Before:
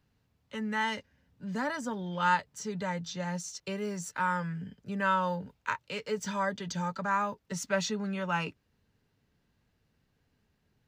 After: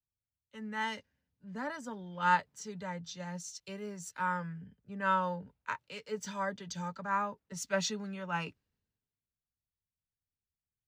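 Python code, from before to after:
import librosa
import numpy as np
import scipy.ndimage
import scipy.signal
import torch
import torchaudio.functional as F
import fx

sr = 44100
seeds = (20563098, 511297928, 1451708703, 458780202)

y = fx.band_widen(x, sr, depth_pct=70)
y = y * 10.0 ** (-5.0 / 20.0)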